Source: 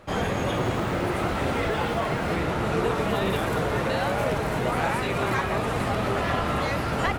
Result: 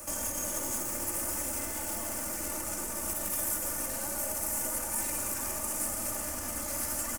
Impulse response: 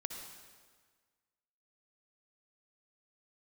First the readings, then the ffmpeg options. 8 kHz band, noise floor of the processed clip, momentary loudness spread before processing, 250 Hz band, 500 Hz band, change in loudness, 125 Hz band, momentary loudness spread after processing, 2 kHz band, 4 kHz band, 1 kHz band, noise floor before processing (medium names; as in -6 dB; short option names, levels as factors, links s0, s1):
+13.5 dB, -37 dBFS, 1 LU, -14.0 dB, -15.5 dB, -5.5 dB, -19.5 dB, 3 LU, -14.0 dB, -9.5 dB, -15.0 dB, -28 dBFS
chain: -filter_complex "[0:a]bandreject=f=390:w=12,acrossover=split=160|400[s0][s1][s2];[s0]acompressor=threshold=0.0251:ratio=4[s3];[s1]acompressor=threshold=0.02:ratio=4[s4];[s2]acompressor=threshold=0.0398:ratio=4[s5];[s3][s4][s5]amix=inputs=3:normalize=0[s6];[1:a]atrim=start_sample=2205,asetrate=39249,aresample=44100[s7];[s6][s7]afir=irnorm=-1:irlink=0,alimiter=level_in=2.37:limit=0.0631:level=0:latency=1:release=304,volume=0.422,aeval=exprs='clip(val(0),-1,0.00531)':c=same,aexciter=amount=14.9:drive=8.8:freq=6000,aecho=1:1:3.4:0.84"